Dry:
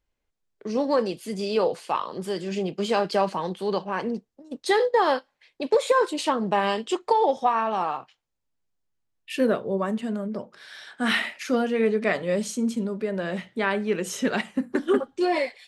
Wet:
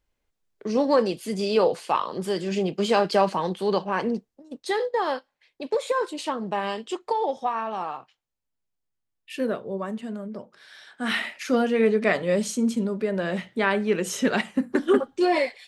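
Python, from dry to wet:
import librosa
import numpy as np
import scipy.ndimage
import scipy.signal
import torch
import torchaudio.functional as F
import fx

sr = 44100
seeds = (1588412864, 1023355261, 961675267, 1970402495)

y = fx.gain(x, sr, db=fx.line((4.14, 2.5), (4.67, -4.5), (10.94, -4.5), (11.61, 2.0)))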